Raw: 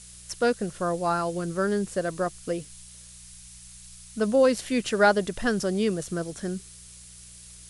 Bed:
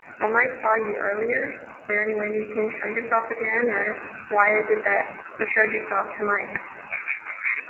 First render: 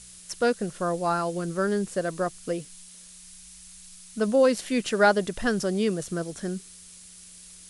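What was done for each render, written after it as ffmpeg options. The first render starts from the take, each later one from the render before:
-af "bandreject=f=60:t=h:w=4,bandreject=f=120:t=h:w=4"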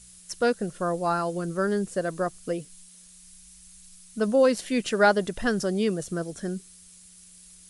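-af "afftdn=nr=6:nf=-48"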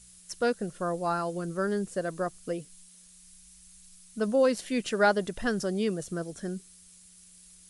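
-af "volume=-3.5dB"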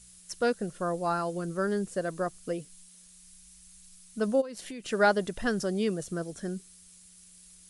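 -filter_complex "[0:a]asplit=3[a][b][c];[a]afade=t=out:st=4.4:d=0.02[d];[b]acompressor=threshold=-36dB:ratio=12:attack=3.2:release=140:knee=1:detection=peak,afade=t=in:st=4.4:d=0.02,afade=t=out:st=4.88:d=0.02[e];[c]afade=t=in:st=4.88:d=0.02[f];[d][e][f]amix=inputs=3:normalize=0"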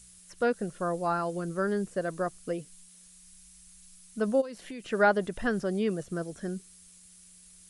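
-filter_complex "[0:a]acrossover=split=2700[a][b];[b]acompressor=threshold=-57dB:ratio=4:attack=1:release=60[c];[a][c]amix=inputs=2:normalize=0,highshelf=f=3.6k:g=7"

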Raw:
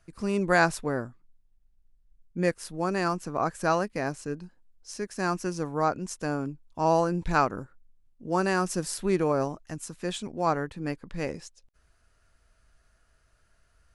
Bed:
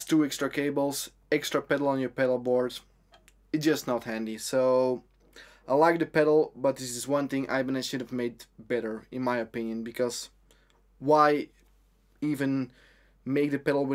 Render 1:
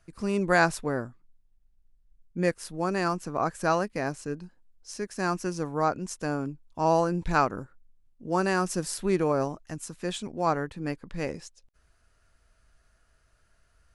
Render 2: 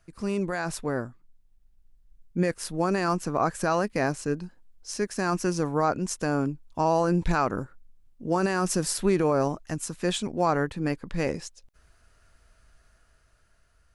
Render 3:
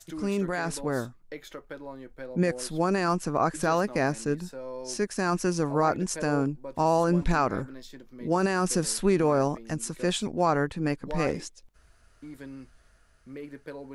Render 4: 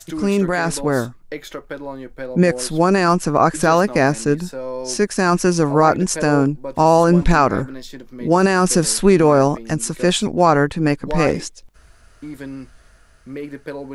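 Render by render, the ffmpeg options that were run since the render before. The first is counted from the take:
-af anull
-af "alimiter=limit=-19.5dB:level=0:latency=1:release=25,dynaudnorm=f=560:g=5:m=5.5dB"
-filter_complex "[1:a]volume=-14.5dB[a];[0:a][a]amix=inputs=2:normalize=0"
-af "volume=10.5dB"

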